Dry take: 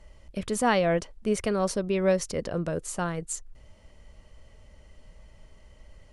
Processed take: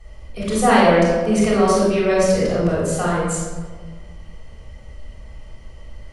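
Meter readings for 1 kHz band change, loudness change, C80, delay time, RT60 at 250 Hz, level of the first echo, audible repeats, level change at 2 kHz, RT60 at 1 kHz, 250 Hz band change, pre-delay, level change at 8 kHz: +11.5 dB, +10.5 dB, 1.5 dB, no echo audible, 1.8 s, no echo audible, no echo audible, +10.0 dB, 1.4 s, +11.0 dB, 3 ms, +7.5 dB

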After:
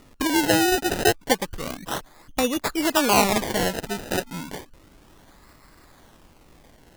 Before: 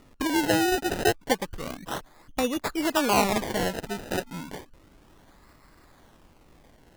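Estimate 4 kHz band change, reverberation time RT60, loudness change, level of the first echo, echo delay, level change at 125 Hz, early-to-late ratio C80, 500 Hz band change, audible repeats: +5.5 dB, no reverb audible, +4.0 dB, no echo audible, no echo audible, +3.0 dB, no reverb audible, +3.0 dB, no echo audible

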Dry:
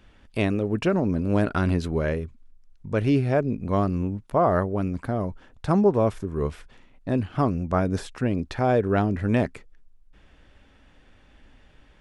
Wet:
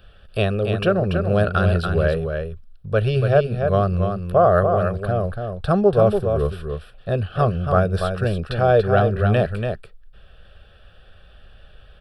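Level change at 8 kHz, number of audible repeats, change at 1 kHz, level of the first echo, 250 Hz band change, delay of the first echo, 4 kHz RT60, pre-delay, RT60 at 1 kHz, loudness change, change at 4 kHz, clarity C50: can't be measured, 1, +5.5 dB, −6.0 dB, −1.0 dB, 286 ms, no reverb audible, no reverb audible, no reverb audible, +5.0 dB, +7.5 dB, no reverb audible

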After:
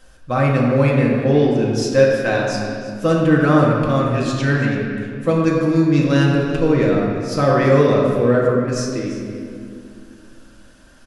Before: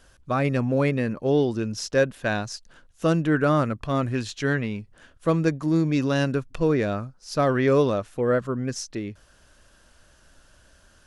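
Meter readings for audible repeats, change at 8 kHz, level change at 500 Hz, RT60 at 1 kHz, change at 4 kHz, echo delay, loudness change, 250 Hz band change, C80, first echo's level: 1, +4.5 dB, +7.5 dB, 2.0 s, +5.5 dB, 336 ms, +7.5 dB, +7.5 dB, 2.5 dB, −14.0 dB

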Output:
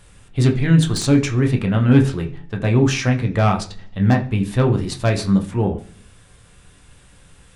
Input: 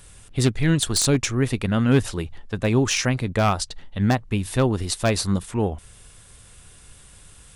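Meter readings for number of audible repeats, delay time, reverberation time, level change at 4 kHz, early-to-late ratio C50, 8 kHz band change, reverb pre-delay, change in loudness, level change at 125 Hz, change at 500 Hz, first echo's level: no echo audible, no echo audible, 0.45 s, −2.0 dB, 13.0 dB, −5.5 dB, 11 ms, +4.0 dB, +6.0 dB, +2.0 dB, no echo audible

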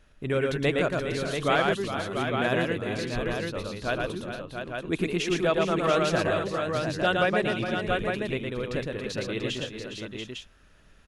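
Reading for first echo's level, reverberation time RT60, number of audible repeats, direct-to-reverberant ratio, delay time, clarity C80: −3.0 dB, no reverb audible, 5, no reverb audible, 114 ms, no reverb audible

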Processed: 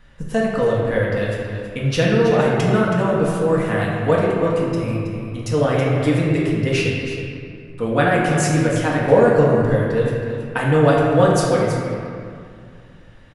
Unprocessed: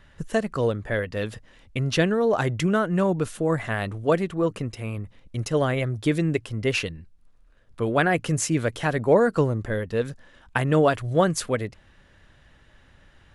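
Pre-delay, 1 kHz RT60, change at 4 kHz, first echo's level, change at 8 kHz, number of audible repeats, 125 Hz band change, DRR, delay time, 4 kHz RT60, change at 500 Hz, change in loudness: 4 ms, 2.3 s, +4.0 dB, −9.5 dB, +2.5 dB, 1, +7.0 dB, −5.5 dB, 323 ms, 1.4 s, +7.0 dB, +6.0 dB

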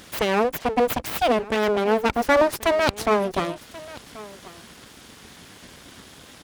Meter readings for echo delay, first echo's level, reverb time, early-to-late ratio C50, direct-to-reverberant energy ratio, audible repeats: 1,084 ms, −19.5 dB, no reverb audible, no reverb audible, no reverb audible, 1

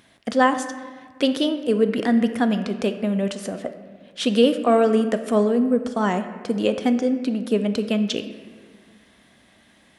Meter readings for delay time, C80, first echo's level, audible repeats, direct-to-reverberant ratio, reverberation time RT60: no echo audible, 11.0 dB, no echo audible, no echo audible, 8.0 dB, 1.7 s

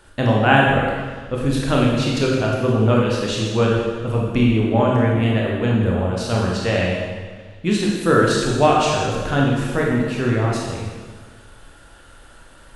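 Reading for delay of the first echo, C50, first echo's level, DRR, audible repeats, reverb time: no echo audible, 0.0 dB, no echo audible, −3.0 dB, no echo audible, 1.5 s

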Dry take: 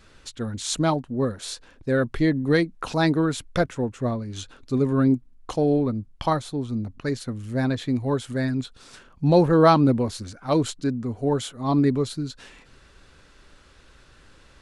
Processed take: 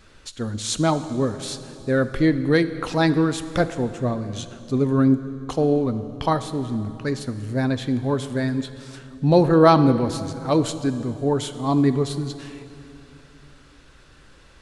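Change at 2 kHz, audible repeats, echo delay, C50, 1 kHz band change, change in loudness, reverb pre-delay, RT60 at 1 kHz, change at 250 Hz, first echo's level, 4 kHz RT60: +1.5 dB, no echo audible, no echo audible, 12.0 dB, +2.0 dB, +2.0 dB, 7 ms, 2.7 s, +2.0 dB, no echo audible, 2.5 s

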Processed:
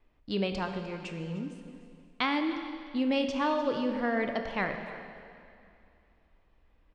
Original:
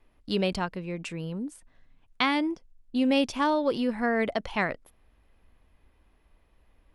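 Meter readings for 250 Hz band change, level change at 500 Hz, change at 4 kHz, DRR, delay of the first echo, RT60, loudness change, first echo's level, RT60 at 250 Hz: −3.5 dB, −3.0 dB, −4.0 dB, 5.0 dB, 302 ms, 2.5 s, −3.5 dB, −17.0 dB, 2.6 s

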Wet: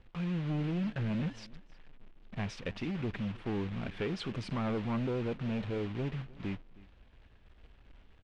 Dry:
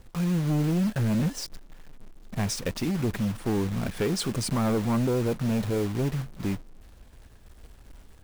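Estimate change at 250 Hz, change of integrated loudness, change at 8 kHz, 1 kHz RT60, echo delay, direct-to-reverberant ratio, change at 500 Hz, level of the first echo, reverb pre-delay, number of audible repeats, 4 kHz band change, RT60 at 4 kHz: −8.5 dB, −8.5 dB, below −20 dB, no reverb audible, 314 ms, no reverb audible, −8.5 dB, −22.0 dB, no reverb audible, 1, −10.0 dB, no reverb audible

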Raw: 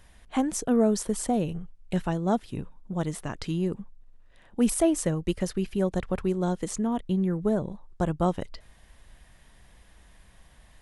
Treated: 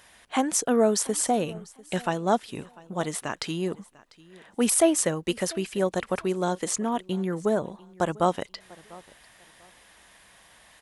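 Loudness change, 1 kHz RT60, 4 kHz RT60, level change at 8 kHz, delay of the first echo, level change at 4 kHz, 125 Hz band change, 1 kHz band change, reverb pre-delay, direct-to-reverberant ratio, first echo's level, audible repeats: +1.5 dB, no reverb audible, no reverb audible, +7.5 dB, 696 ms, +7.5 dB, −4.5 dB, +5.0 dB, no reverb audible, no reverb audible, −22.5 dB, 2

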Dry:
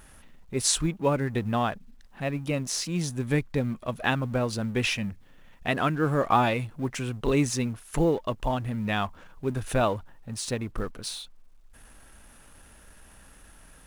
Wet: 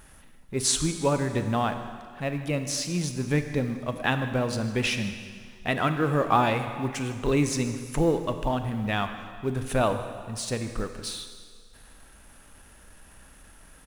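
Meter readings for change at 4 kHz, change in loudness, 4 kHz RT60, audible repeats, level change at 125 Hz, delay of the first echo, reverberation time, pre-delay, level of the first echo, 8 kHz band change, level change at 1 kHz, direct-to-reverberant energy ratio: +0.5 dB, +0.5 dB, 1.9 s, 1, +0.5 dB, 156 ms, 1.9 s, 29 ms, −19.0 dB, +0.5 dB, +0.5 dB, 7.5 dB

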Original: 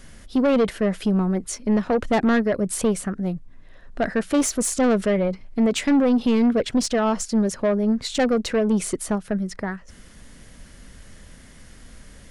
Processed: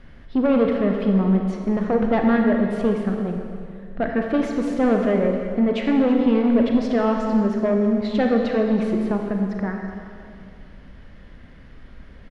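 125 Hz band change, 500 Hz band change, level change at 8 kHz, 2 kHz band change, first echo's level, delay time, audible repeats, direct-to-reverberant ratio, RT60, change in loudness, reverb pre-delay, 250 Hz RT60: +2.0 dB, +1.5 dB, below −20 dB, −0.5 dB, −16.5 dB, 332 ms, 1, 2.0 dB, 2.3 s, +1.0 dB, 28 ms, 2.3 s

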